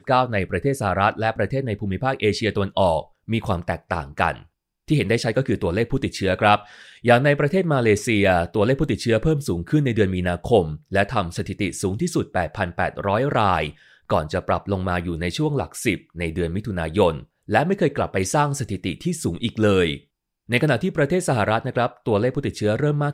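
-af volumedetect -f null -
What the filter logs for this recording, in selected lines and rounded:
mean_volume: -21.6 dB
max_volume: -1.7 dB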